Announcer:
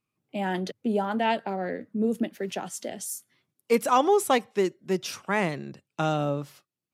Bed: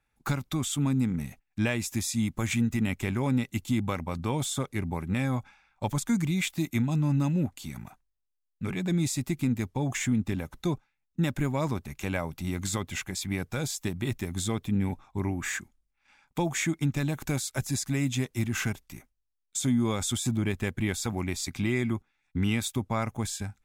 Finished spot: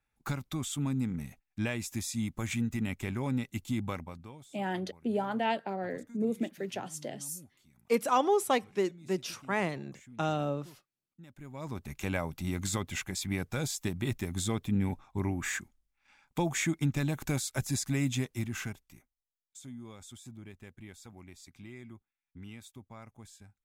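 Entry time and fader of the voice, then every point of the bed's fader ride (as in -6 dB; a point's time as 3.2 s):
4.20 s, -5.0 dB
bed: 3.96 s -5.5 dB
4.49 s -26 dB
11.26 s -26 dB
11.89 s -2 dB
18.11 s -2 dB
19.66 s -20 dB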